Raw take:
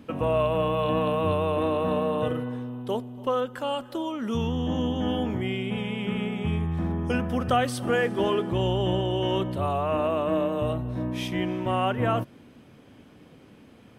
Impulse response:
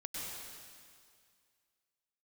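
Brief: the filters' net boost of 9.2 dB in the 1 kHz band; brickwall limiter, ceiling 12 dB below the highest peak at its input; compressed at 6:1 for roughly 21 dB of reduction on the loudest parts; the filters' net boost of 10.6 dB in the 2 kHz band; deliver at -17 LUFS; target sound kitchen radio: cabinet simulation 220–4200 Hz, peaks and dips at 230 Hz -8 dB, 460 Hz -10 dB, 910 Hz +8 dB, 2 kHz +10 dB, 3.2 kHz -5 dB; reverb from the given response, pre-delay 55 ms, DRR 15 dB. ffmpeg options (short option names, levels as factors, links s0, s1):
-filter_complex "[0:a]equalizer=f=1000:t=o:g=5.5,equalizer=f=2000:t=o:g=6,acompressor=threshold=0.0126:ratio=6,alimiter=level_in=4.22:limit=0.0631:level=0:latency=1,volume=0.237,asplit=2[s0][s1];[1:a]atrim=start_sample=2205,adelay=55[s2];[s1][s2]afir=irnorm=-1:irlink=0,volume=0.168[s3];[s0][s3]amix=inputs=2:normalize=0,highpass=220,equalizer=f=230:t=q:w=4:g=-8,equalizer=f=460:t=q:w=4:g=-10,equalizer=f=910:t=q:w=4:g=8,equalizer=f=2000:t=q:w=4:g=10,equalizer=f=3200:t=q:w=4:g=-5,lowpass=f=4200:w=0.5412,lowpass=f=4200:w=1.3066,volume=25.1"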